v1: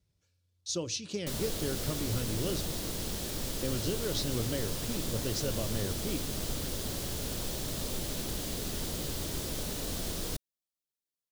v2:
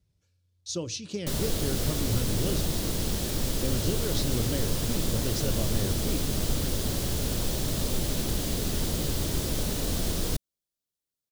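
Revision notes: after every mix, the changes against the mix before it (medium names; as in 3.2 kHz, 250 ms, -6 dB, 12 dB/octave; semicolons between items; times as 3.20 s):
background +4.5 dB; master: add bass shelf 280 Hz +5 dB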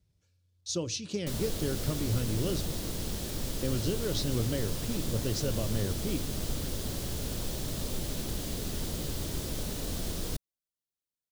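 background -6.0 dB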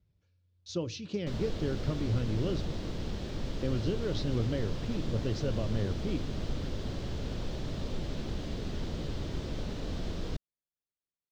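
master: add distance through air 190 m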